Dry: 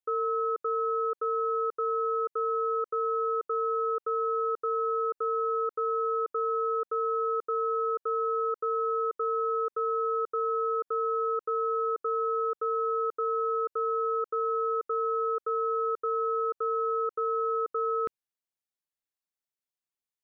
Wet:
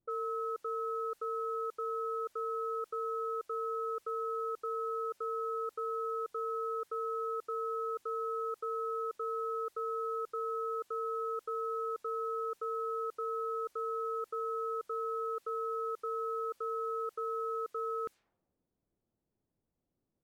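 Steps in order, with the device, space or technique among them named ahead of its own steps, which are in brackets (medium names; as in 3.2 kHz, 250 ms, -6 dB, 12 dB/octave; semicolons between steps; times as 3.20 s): cassette deck with a dynamic noise filter (white noise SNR 32 dB; level-controlled noise filter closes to 320 Hz, open at -27.5 dBFS); trim -7.5 dB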